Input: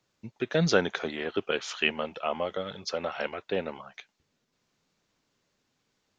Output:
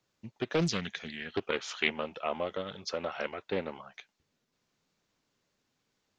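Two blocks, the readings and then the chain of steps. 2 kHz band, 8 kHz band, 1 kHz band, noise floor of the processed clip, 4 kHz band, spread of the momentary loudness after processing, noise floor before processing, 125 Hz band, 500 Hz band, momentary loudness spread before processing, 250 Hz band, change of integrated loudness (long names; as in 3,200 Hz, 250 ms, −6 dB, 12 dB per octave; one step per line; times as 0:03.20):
−4.0 dB, can't be measured, −4.0 dB, −80 dBFS, −4.0 dB, 13 LU, −77 dBFS, −4.0 dB, −5.0 dB, 15 LU, −3.5 dB, −4.0 dB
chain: gain on a spectral selection 0:00.67–0:01.34, 240–1,600 Hz −13 dB
highs frequency-modulated by the lows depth 0.67 ms
level −3 dB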